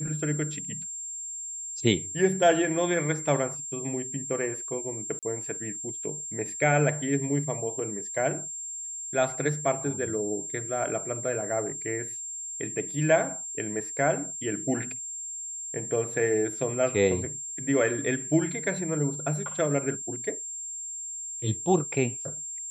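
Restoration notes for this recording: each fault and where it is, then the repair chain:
whine 7.4 kHz -34 dBFS
5.19–5.23 s: dropout 37 ms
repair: band-stop 7.4 kHz, Q 30; interpolate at 5.19 s, 37 ms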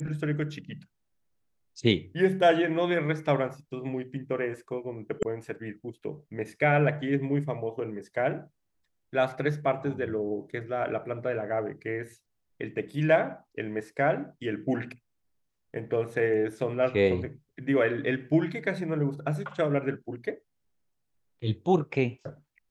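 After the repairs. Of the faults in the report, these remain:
nothing left

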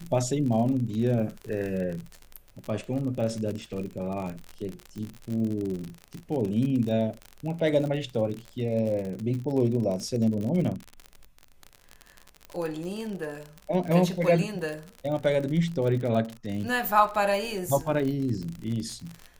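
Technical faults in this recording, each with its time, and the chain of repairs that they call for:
crackle 49 per s -31 dBFS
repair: de-click

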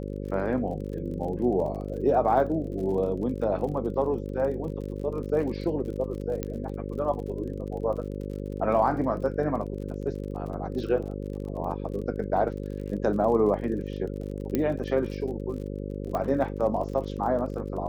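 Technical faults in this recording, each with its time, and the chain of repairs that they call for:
buzz 50 Hz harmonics 11 -34 dBFS
crackle 38 per s -37 dBFS
6.43 s: pop -16 dBFS
14.55 s: pop -13 dBFS
16.15 s: pop -18 dBFS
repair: de-click; de-hum 50 Hz, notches 11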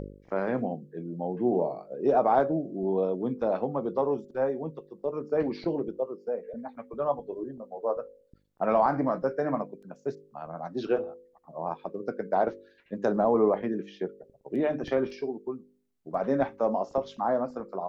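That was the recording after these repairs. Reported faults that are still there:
14.55 s: pop
16.15 s: pop

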